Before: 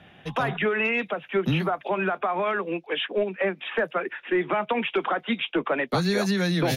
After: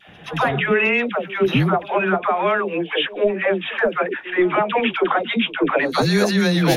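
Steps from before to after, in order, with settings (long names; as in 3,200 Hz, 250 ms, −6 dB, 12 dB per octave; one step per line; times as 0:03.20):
all-pass dispersion lows, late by 81 ms, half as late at 660 Hz
echo ahead of the sound 124 ms −20.5 dB
level +6.5 dB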